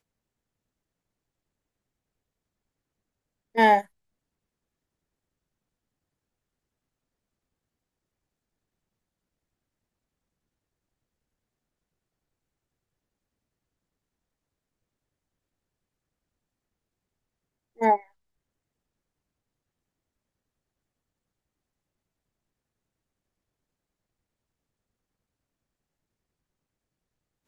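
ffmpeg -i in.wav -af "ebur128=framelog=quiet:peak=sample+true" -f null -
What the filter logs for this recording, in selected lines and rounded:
Integrated loudness:
  I:         -23.0 LUFS
  Threshold: -34.0 LUFS
Loudness range:
  LRA:         4.2 LU
  Threshold: -50.8 LUFS
  LRA low:   -33.0 LUFS
  LRA high:  -28.7 LUFS
Sample peak:
  Peak:       -6.8 dBFS
True peak:
  Peak:       -6.8 dBFS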